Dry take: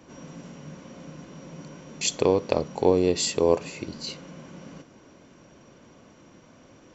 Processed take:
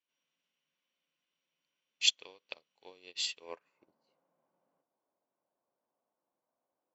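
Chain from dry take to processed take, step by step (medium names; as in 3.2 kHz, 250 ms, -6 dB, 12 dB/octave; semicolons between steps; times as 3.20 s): band-pass sweep 3.1 kHz -> 780 Hz, 3.37–3.87 s; upward expansion 2.5:1, over -51 dBFS; trim +7 dB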